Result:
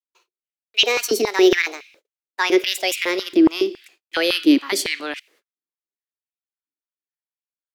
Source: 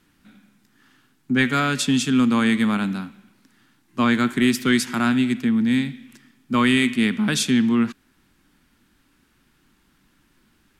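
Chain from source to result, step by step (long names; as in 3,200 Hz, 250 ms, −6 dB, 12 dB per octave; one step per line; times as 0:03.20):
gliding playback speed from 179% → 100%
noise gate −50 dBFS, range −50 dB
parametric band 4,500 Hz +4 dB 2.8 octaves
automatic gain control gain up to 6 dB
high-pass on a step sequencer 7.2 Hz 290–2,500 Hz
level −6 dB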